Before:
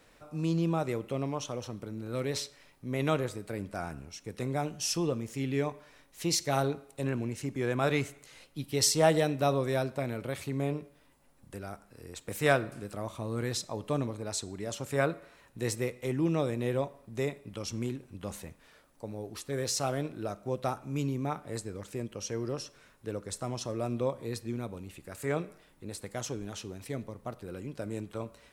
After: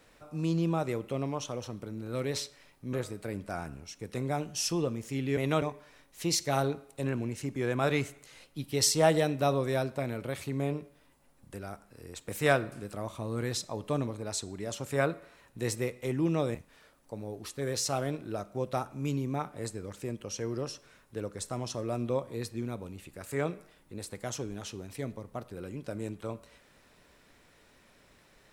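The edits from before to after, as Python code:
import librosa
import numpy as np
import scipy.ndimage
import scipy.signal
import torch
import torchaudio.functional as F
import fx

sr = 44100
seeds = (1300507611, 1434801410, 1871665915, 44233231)

y = fx.edit(x, sr, fx.move(start_s=2.93, length_s=0.25, to_s=5.62),
    fx.cut(start_s=16.55, length_s=1.91), tone=tone)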